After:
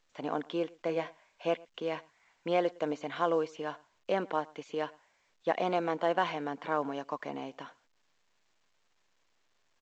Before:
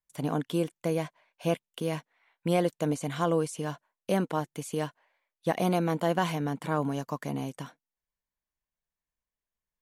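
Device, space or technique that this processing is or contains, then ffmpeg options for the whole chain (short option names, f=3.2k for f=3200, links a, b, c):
telephone: -filter_complex "[0:a]highshelf=f=8.1k:g=-4.5,asettb=1/sr,asplit=3[a][b][c];[a]atrim=end=0.874[d];[b]atrim=start=0.87:end=1.47,asetpts=PTS-STARTPTS,afade=t=in:d=0.004:c=qsin,afade=t=out:st=0.596:d=0.004:c=qsin,asplit=2[e][f];[f]adelay=24,volume=-7.5dB[g];[e][g]amix=inputs=2:normalize=0,atrim=end_sample=26460[h];[c]atrim=start=1.466[i];[d][h]acrossfade=d=0.004:c1=hsin:c2=qsin[j];[j][i]acrossfade=d=0.004:c1=qsin:c2=hsin,highpass=390,lowpass=3.5k,asplit=2[k][l];[l]adelay=110.8,volume=-24dB,highshelf=f=4k:g=-2.49[m];[k][m]amix=inputs=2:normalize=0" -ar 16000 -c:a pcm_alaw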